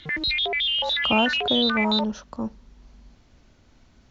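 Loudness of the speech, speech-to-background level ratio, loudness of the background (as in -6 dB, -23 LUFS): -27.0 LUFS, -4.5 dB, -22.5 LUFS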